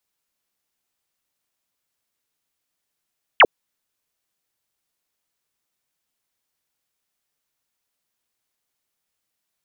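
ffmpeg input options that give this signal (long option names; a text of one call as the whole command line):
ffmpeg -f lavfi -i "aevalsrc='0.473*clip(t/0.002,0,1)*clip((0.05-t)/0.002,0,1)*sin(2*PI*3400*0.05/log(340/3400)*(exp(log(340/3400)*t/0.05)-1))':duration=0.05:sample_rate=44100" out.wav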